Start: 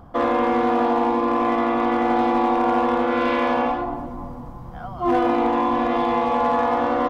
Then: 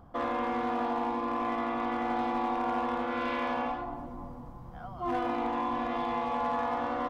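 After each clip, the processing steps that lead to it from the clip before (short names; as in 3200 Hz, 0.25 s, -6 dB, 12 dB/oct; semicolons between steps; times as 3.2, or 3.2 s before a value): dynamic EQ 400 Hz, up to -6 dB, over -33 dBFS, Q 1.3; gain -9 dB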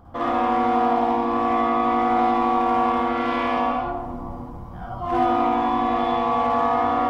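reverb RT60 0.35 s, pre-delay 50 ms, DRR -4 dB; gain +3.5 dB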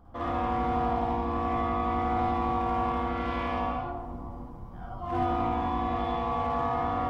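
octaver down 2 oct, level +1 dB; gain -8.5 dB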